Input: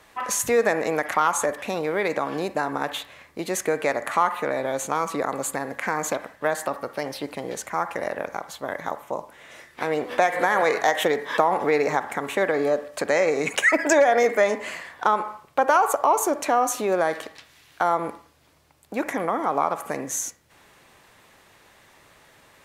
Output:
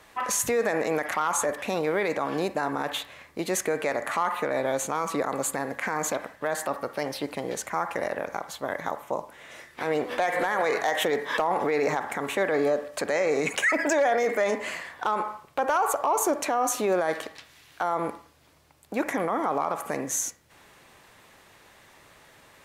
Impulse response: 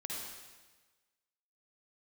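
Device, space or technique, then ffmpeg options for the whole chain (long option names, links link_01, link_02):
clipper into limiter: -af "asoftclip=type=hard:threshold=-10dB,alimiter=limit=-16dB:level=0:latency=1:release=16"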